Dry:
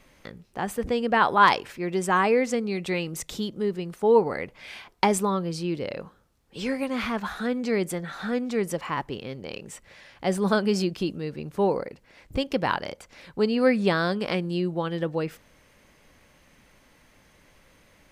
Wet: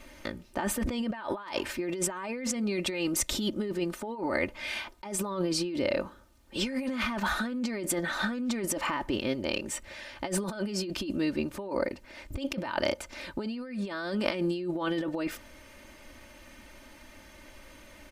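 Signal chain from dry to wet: comb 3.3 ms, depth 74%; negative-ratio compressor -31 dBFS, ratio -1; gain -1 dB

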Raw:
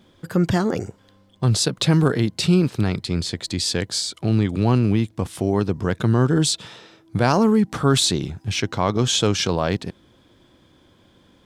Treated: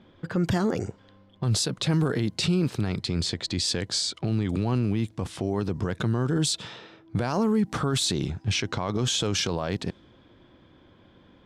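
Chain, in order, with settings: low-pass opened by the level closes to 2900 Hz, open at -16.5 dBFS; limiter -16.5 dBFS, peak gain reduction 11.5 dB

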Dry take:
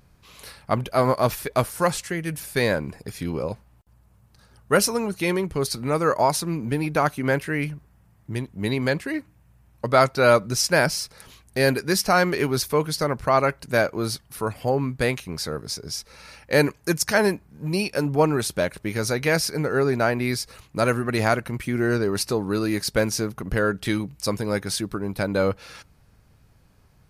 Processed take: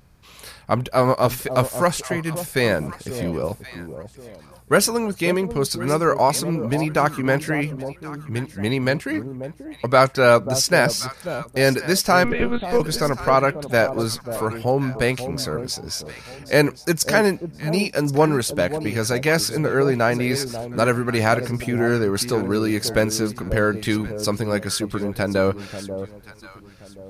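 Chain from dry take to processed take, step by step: 12.24–12.8 monotone LPC vocoder at 8 kHz 240 Hz; echo with dull and thin repeats by turns 0.538 s, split 840 Hz, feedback 52%, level -10 dB; gain +2.5 dB

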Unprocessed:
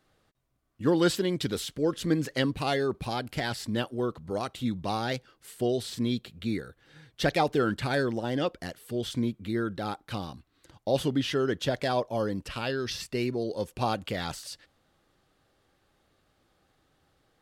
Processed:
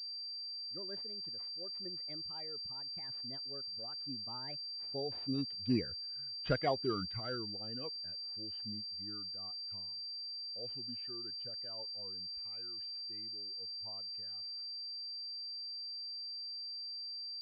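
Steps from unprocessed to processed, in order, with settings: per-bin expansion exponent 1.5; Doppler pass-by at 5.95, 41 m/s, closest 6.9 m; pulse-width modulation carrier 4700 Hz; gain +6.5 dB

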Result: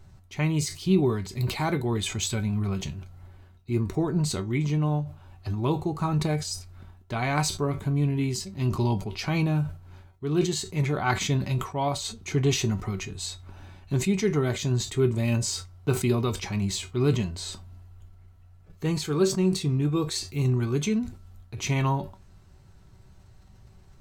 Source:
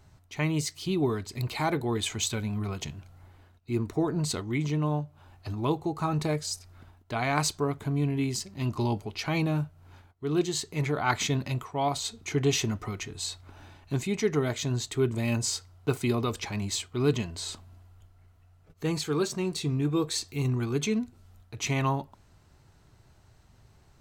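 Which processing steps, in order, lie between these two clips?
low shelf 170 Hz +9.5 dB; resonator 190 Hz, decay 0.17 s, harmonics all, mix 70%; sustainer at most 130 dB/s; gain +6.5 dB

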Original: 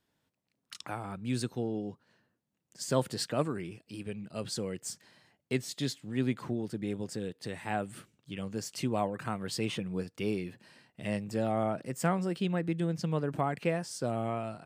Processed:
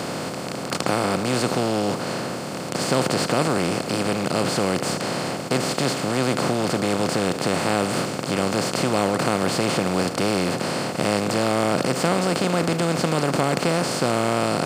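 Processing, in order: per-bin compression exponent 0.2; gain +2 dB

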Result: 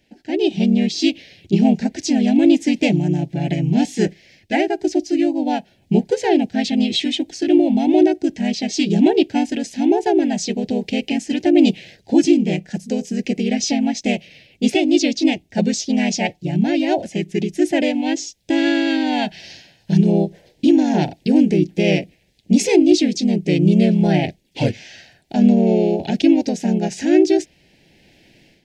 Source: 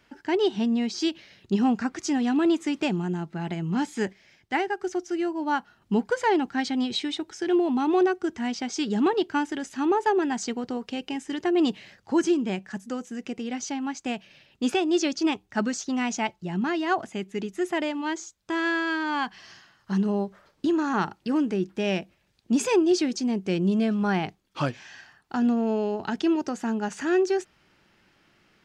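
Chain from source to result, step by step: harmoniser -3 st -1 dB; AGC gain up to 11.5 dB; Butterworth band-stop 1200 Hz, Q 0.93; gain -1 dB

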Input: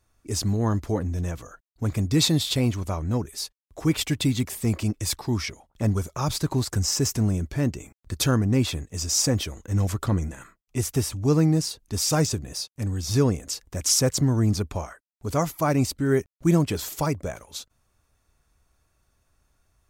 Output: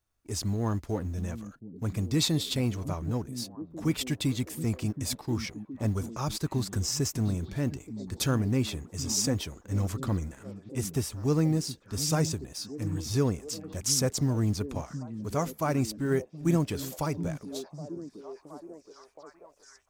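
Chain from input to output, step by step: G.711 law mismatch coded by A; delay with a stepping band-pass 0.721 s, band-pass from 190 Hz, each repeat 0.7 oct, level -7.5 dB; gain -5 dB

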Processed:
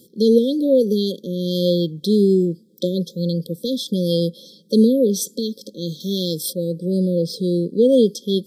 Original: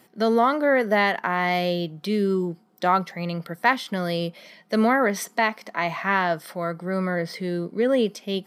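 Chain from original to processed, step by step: 6–6.53 high shelf 2200 Hz +11.5 dB; brick-wall FIR band-stop 560–3200 Hz; gain +7.5 dB

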